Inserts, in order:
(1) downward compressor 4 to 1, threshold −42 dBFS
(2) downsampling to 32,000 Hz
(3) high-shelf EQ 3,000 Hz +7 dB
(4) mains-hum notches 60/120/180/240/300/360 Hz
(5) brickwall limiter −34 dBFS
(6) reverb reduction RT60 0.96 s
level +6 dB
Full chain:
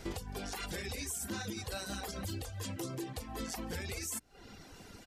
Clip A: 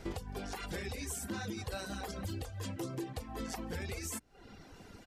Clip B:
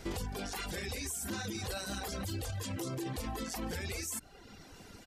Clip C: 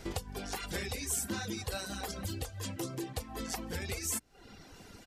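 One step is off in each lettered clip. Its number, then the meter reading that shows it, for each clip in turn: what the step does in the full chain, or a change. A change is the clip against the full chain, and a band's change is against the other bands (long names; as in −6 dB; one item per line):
3, 8 kHz band −4.0 dB
1, average gain reduction 9.0 dB
5, change in crest factor +5.0 dB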